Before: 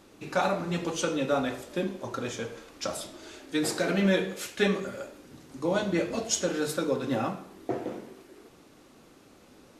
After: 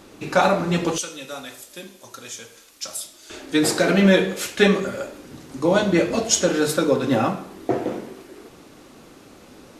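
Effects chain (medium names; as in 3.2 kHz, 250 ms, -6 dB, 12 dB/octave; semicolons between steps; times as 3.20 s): 0.98–3.30 s: pre-emphasis filter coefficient 0.9; trim +9 dB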